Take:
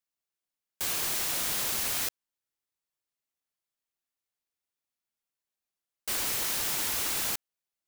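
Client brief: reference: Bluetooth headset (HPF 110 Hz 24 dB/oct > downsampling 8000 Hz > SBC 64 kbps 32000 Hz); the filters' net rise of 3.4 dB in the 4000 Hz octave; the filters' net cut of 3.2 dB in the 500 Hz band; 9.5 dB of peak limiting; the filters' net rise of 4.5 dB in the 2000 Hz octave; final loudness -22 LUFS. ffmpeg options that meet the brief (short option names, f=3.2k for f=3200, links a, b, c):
-af "equalizer=f=500:t=o:g=-4.5,equalizer=f=2k:t=o:g=5,equalizer=f=4k:t=o:g=3,alimiter=level_in=1.5dB:limit=-24dB:level=0:latency=1,volume=-1.5dB,highpass=f=110:w=0.5412,highpass=f=110:w=1.3066,aresample=8000,aresample=44100,volume=17.5dB" -ar 32000 -c:a sbc -b:a 64k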